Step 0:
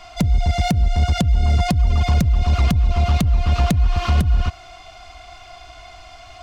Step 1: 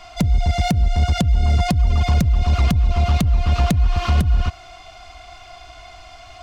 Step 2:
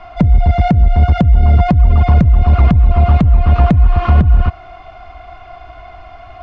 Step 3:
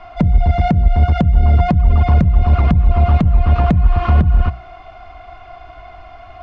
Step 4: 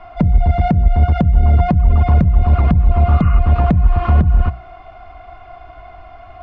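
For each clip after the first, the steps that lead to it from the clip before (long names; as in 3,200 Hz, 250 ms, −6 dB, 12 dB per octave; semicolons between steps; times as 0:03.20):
no processing that can be heard
low-pass filter 1,600 Hz 12 dB per octave; level +7.5 dB
mains-hum notches 60/120/180 Hz; level −2 dB
healed spectral selection 0:03.13–0:03.36, 990–3,000 Hz before; high-shelf EQ 3,200 Hz −9 dB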